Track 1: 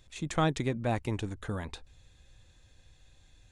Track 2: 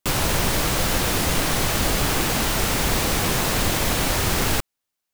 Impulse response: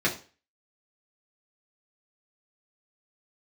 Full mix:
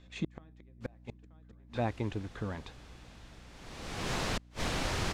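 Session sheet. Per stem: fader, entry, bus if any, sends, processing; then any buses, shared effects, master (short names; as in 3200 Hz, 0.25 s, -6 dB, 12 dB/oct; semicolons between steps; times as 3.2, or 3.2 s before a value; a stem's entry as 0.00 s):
+1.5 dB, 0.00 s, send -15.5 dB, echo send -3 dB, HPF 53 Hz 6 dB/oct; high shelf 3800 Hz -8.5 dB
-10.5 dB, 0.75 s, no send, no echo send, auto duck -23 dB, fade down 1.35 s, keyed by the first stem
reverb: on, RT60 0.35 s, pre-delay 3 ms
echo: echo 0.928 s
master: LPF 6000 Hz 12 dB/oct; flipped gate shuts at -21 dBFS, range -39 dB; hum 60 Hz, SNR 18 dB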